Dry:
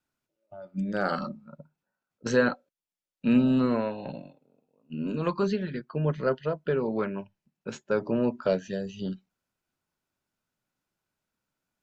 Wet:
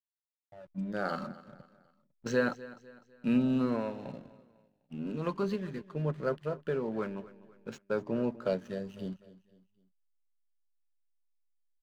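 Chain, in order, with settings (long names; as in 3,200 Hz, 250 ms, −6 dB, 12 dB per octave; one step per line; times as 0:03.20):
slack as between gear wheels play −42.5 dBFS
on a send: repeating echo 251 ms, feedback 41%, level −18 dB
on the sum: level −5.5 dB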